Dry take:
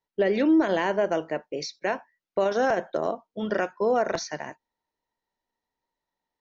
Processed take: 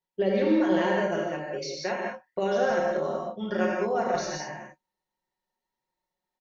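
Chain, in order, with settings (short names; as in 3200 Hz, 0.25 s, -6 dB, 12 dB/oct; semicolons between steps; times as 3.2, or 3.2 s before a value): comb 5.5 ms, depth 69%; non-linear reverb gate 0.23 s flat, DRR -2.5 dB; gain -7 dB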